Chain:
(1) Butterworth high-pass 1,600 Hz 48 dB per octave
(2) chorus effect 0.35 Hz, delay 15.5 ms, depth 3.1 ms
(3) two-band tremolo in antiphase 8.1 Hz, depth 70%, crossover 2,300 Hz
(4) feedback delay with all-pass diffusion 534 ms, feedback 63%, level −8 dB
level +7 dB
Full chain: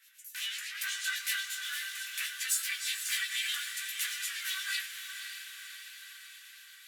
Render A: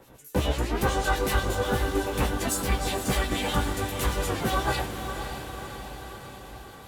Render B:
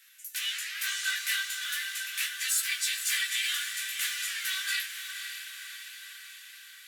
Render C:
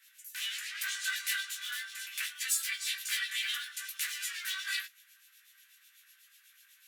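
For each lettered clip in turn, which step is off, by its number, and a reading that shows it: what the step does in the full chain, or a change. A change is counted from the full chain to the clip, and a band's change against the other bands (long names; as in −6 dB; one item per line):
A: 1, 1 kHz band +23.0 dB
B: 3, change in integrated loudness +3.5 LU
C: 4, echo-to-direct ratio −6.0 dB to none audible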